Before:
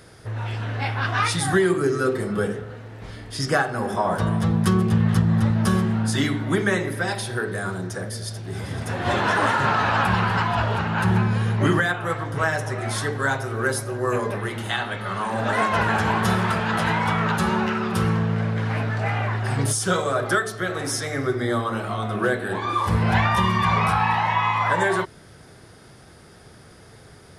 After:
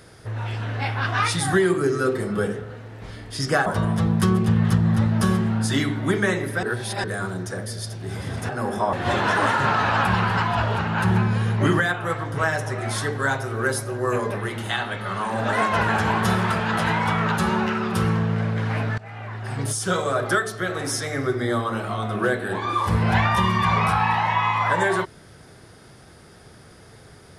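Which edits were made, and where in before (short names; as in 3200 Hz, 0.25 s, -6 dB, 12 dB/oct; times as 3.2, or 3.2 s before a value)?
3.66–4.1 move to 8.93
7.07–7.48 reverse
18.98–20.09 fade in, from -20 dB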